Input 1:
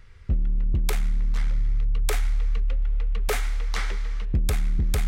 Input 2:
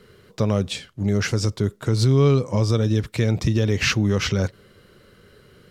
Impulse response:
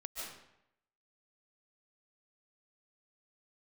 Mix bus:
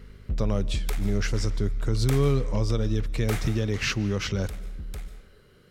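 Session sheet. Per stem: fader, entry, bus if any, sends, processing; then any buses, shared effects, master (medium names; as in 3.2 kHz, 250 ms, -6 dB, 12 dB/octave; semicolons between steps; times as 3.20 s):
3.42 s -1.5 dB -> 3.67 s -10 dB, 0.00 s, send -11.5 dB, hum 50 Hz, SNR 24 dB; auto duck -6 dB, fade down 0.30 s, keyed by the second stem
-7.0 dB, 0.00 s, send -17.5 dB, none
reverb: on, RT60 0.80 s, pre-delay 105 ms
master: none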